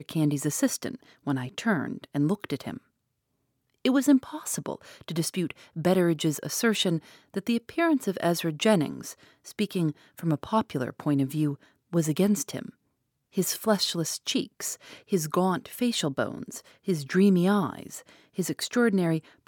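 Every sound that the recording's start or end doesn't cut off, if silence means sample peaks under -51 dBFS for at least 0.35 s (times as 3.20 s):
3.85–12.70 s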